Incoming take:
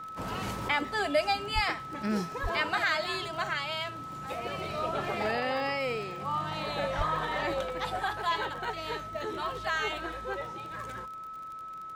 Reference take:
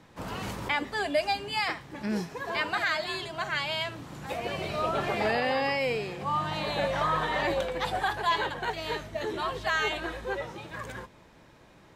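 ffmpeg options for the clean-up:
-filter_complex "[0:a]adeclick=t=4,bandreject=f=1300:w=30,asplit=3[s0][s1][s2];[s0]afade=t=out:st=1.54:d=0.02[s3];[s1]highpass=f=140:w=0.5412,highpass=f=140:w=1.3066,afade=t=in:st=1.54:d=0.02,afade=t=out:st=1.66:d=0.02[s4];[s2]afade=t=in:st=1.66:d=0.02[s5];[s3][s4][s5]amix=inputs=3:normalize=0,asplit=3[s6][s7][s8];[s6]afade=t=out:st=2.42:d=0.02[s9];[s7]highpass=f=140:w=0.5412,highpass=f=140:w=1.3066,afade=t=in:st=2.42:d=0.02,afade=t=out:st=2.54:d=0.02[s10];[s8]afade=t=in:st=2.54:d=0.02[s11];[s9][s10][s11]amix=inputs=3:normalize=0,asplit=3[s12][s13][s14];[s12]afade=t=out:st=6.97:d=0.02[s15];[s13]highpass=f=140:w=0.5412,highpass=f=140:w=1.3066,afade=t=in:st=6.97:d=0.02,afade=t=out:st=7.09:d=0.02[s16];[s14]afade=t=in:st=7.09:d=0.02[s17];[s15][s16][s17]amix=inputs=3:normalize=0,asetnsamples=n=441:p=0,asendcmd='3.53 volume volume 3.5dB',volume=1"

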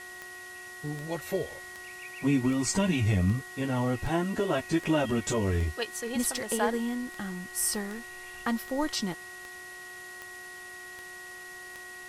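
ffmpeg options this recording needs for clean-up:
-af "adeclick=t=4,bandreject=f=363.9:t=h:w=4,bandreject=f=727.8:t=h:w=4,bandreject=f=1091.7:t=h:w=4,bandreject=f=1455.6:t=h:w=4,bandreject=f=1900:w=30,afwtdn=0.0032"

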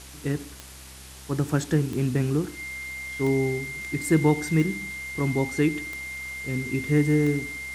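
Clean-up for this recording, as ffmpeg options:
-af "adeclick=t=4,bandreject=f=65.4:t=h:w=4,bandreject=f=130.8:t=h:w=4,bandreject=f=196.2:t=h:w=4,bandreject=f=261.6:t=h:w=4,bandreject=f=327:t=h:w=4,bandreject=f=392.4:t=h:w=4,bandreject=f=2100:w=30,afwtdn=0.0063"

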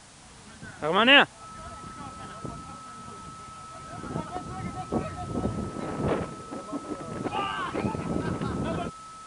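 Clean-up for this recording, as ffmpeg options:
-af "bandreject=f=1300:w=30,afwtdn=0.0032"

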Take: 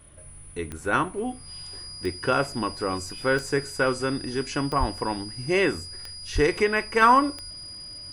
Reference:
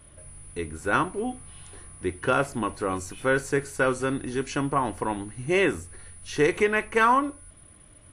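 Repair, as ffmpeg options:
-filter_complex "[0:a]adeclick=t=4,bandreject=f=4900:w=30,asplit=3[s0][s1][s2];[s0]afade=t=out:st=4.79:d=0.02[s3];[s1]highpass=f=140:w=0.5412,highpass=f=140:w=1.3066,afade=t=in:st=4.79:d=0.02,afade=t=out:st=4.91:d=0.02[s4];[s2]afade=t=in:st=4.91:d=0.02[s5];[s3][s4][s5]amix=inputs=3:normalize=0,asplit=3[s6][s7][s8];[s6]afade=t=out:st=6.34:d=0.02[s9];[s7]highpass=f=140:w=0.5412,highpass=f=140:w=1.3066,afade=t=in:st=6.34:d=0.02,afade=t=out:st=6.46:d=0.02[s10];[s8]afade=t=in:st=6.46:d=0.02[s11];[s9][s10][s11]amix=inputs=3:normalize=0,asetnsamples=n=441:p=0,asendcmd='7.02 volume volume -3.5dB',volume=1"

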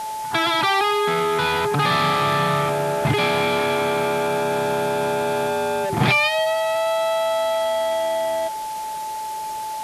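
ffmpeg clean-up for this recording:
-af "bandreject=f=870:w=30,afwtdn=0.013"

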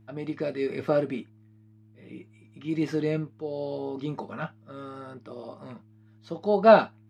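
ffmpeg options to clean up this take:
-af "bandreject=f=108:t=h:w=4,bandreject=f=216:t=h:w=4,bandreject=f=324:t=h:w=4"

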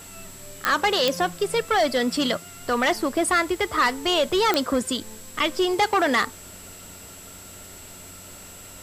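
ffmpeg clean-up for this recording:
-af "adeclick=t=4,bandreject=f=92:t=h:w=4,bandreject=f=184:t=h:w=4,bandreject=f=276:t=h:w=4,bandreject=f=368:t=h:w=4,bandreject=f=7700:w=30,afwtdn=0.0056"

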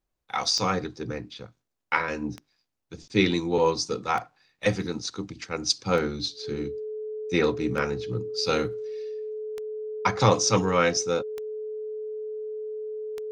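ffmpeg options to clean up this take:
-af "adeclick=t=4,bandreject=f=430:w=30"

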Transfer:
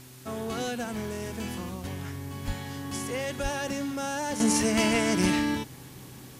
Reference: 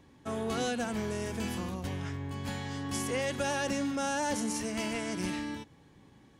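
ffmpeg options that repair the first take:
-filter_complex "[0:a]bandreject=f=127.6:t=h:w=4,bandreject=f=255.2:t=h:w=4,bandreject=f=382.8:t=h:w=4,asplit=3[s0][s1][s2];[s0]afade=t=out:st=2.46:d=0.02[s3];[s1]highpass=f=140:w=0.5412,highpass=f=140:w=1.3066,afade=t=in:st=2.46:d=0.02,afade=t=out:st=2.58:d=0.02[s4];[s2]afade=t=in:st=2.58:d=0.02[s5];[s3][s4][s5]amix=inputs=3:normalize=0,asplit=3[s6][s7][s8];[s6]afade=t=out:st=3.42:d=0.02[s9];[s7]highpass=f=140:w=0.5412,highpass=f=140:w=1.3066,afade=t=in:st=3.42:d=0.02,afade=t=out:st=3.54:d=0.02[s10];[s8]afade=t=in:st=3.54:d=0.02[s11];[s9][s10][s11]amix=inputs=3:normalize=0,afwtdn=0.0028,asetnsamples=n=441:p=0,asendcmd='4.4 volume volume -10dB',volume=1"

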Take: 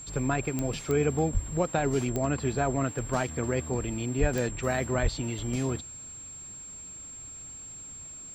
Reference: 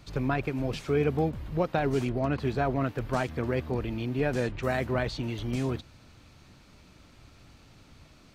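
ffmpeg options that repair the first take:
-filter_complex "[0:a]adeclick=t=4,bandreject=f=7500:w=30,asplit=3[s0][s1][s2];[s0]afade=t=out:st=1.33:d=0.02[s3];[s1]highpass=f=140:w=0.5412,highpass=f=140:w=1.3066,afade=t=in:st=1.33:d=0.02,afade=t=out:st=1.45:d=0.02[s4];[s2]afade=t=in:st=1.45:d=0.02[s5];[s3][s4][s5]amix=inputs=3:normalize=0,asplit=3[s6][s7][s8];[s6]afade=t=out:st=4.2:d=0.02[s9];[s7]highpass=f=140:w=0.5412,highpass=f=140:w=1.3066,afade=t=in:st=4.2:d=0.02,afade=t=out:st=4.32:d=0.02[s10];[s8]afade=t=in:st=4.32:d=0.02[s11];[s9][s10][s11]amix=inputs=3:normalize=0,asplit=3[s12][s13][s14];[s12]afade=t=out:st=5.02:d=0.02[s15];[s13]highpass=f=140:w=0.5412,highpass=f=140:w=1.3066,afade=t=in:st=5.02:d=0.02,afade=t=out:st=5.14:d=0.02[s16];[s14]afade=t=in:st=5.14:d=0.02[s17];[s15][s16][s17]amix=inputs=3:normalize=0"

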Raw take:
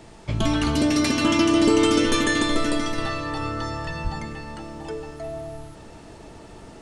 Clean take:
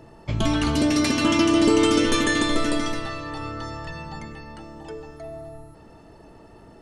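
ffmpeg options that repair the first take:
-filter_complex "[0:a]asplit=3[s0][s1][s2];[s0]afade=t=out:st=4.03:d=0.02[s3];[s1]highpass=f=140:w=0.5412,highpass=f=140:w=1.3066,afade=t=in:st=4.03:d=0.02,afade=t=out:st=4.15:d=0.02[s4];[s2]afade=t=in:st=4.15:d=0.02[s5];[s3][s4][s5]amix=inputs=3:normalize=0,agate=range=0.0891:threshold=0.0178,asetnsamples=n=441:p=0,asendcmd='2.98 volume volume -4dB',volume=1"

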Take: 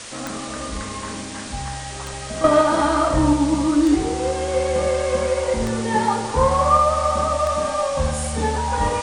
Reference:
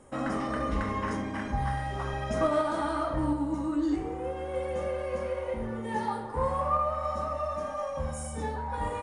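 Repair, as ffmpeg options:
-af "adeclick=t=4,afwtdn=0.022,asetnsamples=n=441:p=0,asendcmd='2.44 volume volume -11.5dB',volume=1"

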